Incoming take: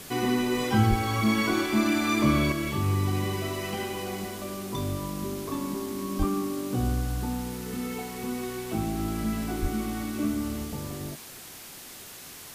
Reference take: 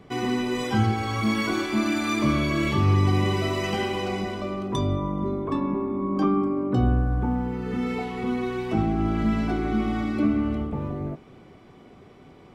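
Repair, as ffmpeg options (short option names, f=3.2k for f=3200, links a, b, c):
-filter_complex "[0:a]asplit=3[a][b][c];[a]afade=t=out:st=0.89:d=0.02[d];[b]highpass=f=140:w=0.5412,highpass=f=140:w=1.3066,afade=t=in:st=0.89:d=0.02,afade=t=out:st=1.01:d=0.02[e];[c]afade=t=in:st=1.01:d=0.02[f];[d][e][f]amix=inputs=3:normalize=0,asplit=3[g][h][i];[g]afade=t=out:st=6.18:d=0.02[j];[h]highpass=f=140:w=0.5412,highpass=f=140:w=1.3066,afade=t=in:st=6.18:d=0.02,afade=t=out:st=6.3:d=0.02[k];[i]afade=t=in:st=6.3:d=0.02[l];[j][k][l]amix=inputs=3:normalize=0,asplit=3[m][n][o];[m]afade=t=out:st=9.61:d=0.02[p];[n]highpass=f=140:w=0.5412,highpass=f=140:w=1.3066,afade=t=in:st=9.61:d=0.02,afade=t=out:st=9.73:d=0.02[q];[o]afade=t=in:st=9.73:d=0.02[r];[p][q][r]amix=inputs=3:normalize=0,afwtdn=0.0071,asetnsamples=n=441:p=0,asendcmd='2.52 volume volume 6dB',volume=0dB"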